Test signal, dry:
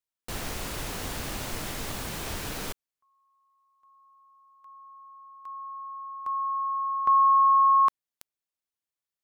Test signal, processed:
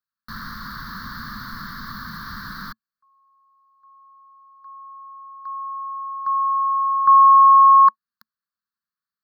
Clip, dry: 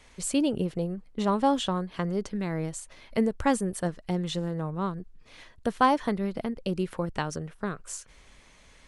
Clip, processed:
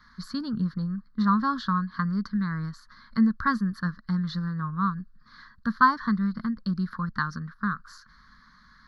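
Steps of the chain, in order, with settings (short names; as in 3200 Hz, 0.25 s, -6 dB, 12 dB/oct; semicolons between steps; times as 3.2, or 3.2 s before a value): EQ curve 110 Hz 0 dB, 220 Hz +10 dB, 350 Hz -14 dB, 750 Hz -19 dB, 1100 Hz +13 dB, 1700 Hz +12 dB, 2600 Hz -22 dB, 4400 Hz +9 dB, 8800 Hz -30 dB, 13000 Hz 0 dB; gain -3.5 dB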